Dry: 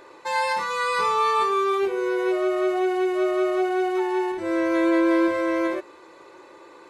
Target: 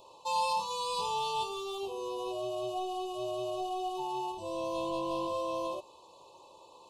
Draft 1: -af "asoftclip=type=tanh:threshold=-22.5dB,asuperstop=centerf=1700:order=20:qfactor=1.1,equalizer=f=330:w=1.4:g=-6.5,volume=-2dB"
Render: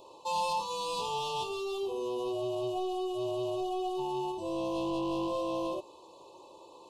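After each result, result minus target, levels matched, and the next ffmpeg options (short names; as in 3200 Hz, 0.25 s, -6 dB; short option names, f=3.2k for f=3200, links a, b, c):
soft clip: distortion +8 dB; 250 Hz band +4.5 dB
-af "asoftclip=type=tanh:threshold=-16dB,asuperstop=centerf=1700:order=20:qfactor=1.1,equalizer=f=330:w=1.4:g=-6.5,volume=-2dB"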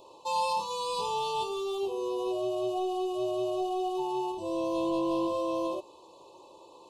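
250 Hz band +5.0 dB
-af "asoftclip=type=tanh:threshold=-16dB,asuperstop=centerf=1700:order=20:qfactor=1.1,equalizer=f=330:w=1.4:g=-15.5,volume=-2dB"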